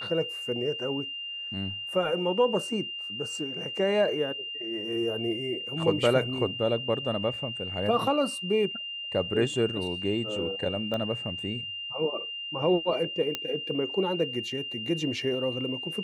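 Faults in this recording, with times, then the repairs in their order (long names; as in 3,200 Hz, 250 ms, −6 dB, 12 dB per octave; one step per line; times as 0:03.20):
whistle 2,800 Hz −34 dBFS
0:10.94: click −20 dBFS
0:13.35: click −14 dBFS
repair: click removal
notch filter 2,800 Hz, Q 30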